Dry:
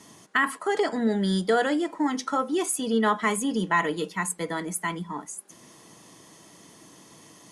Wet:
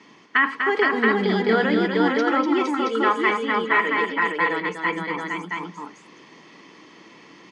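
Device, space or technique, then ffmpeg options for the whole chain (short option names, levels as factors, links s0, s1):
kitchen radio: -filter_complex "[0:a]asettb=1/sr,asplit=3[s0][s1][s2];[s0]atrim=end=2.744[s3];[s1]atrim=start=2.74:end=4.4,asetpts=PTS-STARTPTS,afade=t=in:d=0.004:c=qsin,afade=t=out:st=1.656:d=0.004:c=qsin,bass=f=250:g=-15,treble=f=4000:g=-6[s4];[s2]atrim=start=4.396[s5];[s3][s4]acrossfade=d=0.004:c1=hsin:c2=qsin[s6];[s6][s5]acrossfade=d=0.004:c1=qsin:c2=hsin,highpass=230,equalizer=f=660:t=q:w=4:g=-9,equalizer=f=2300:t=q:w=4:g=7,equalizer=f=3600:t=q:w=4:g=-5,lowpass=f=4300:w=0.5412,lowpass=f=4300:w=1.3066,aecho=1:1:89|246|464|674:0.133|0.501|0.668|0.668,volume=1.5"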